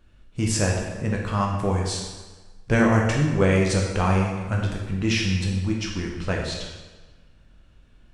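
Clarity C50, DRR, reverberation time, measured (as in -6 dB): 2.5 dB, -1.5 dB, 1.3 s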